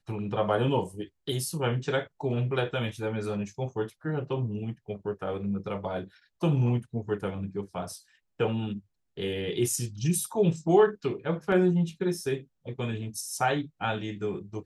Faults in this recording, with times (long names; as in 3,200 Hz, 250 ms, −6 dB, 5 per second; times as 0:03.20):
0:11.52: drop-out 2 ms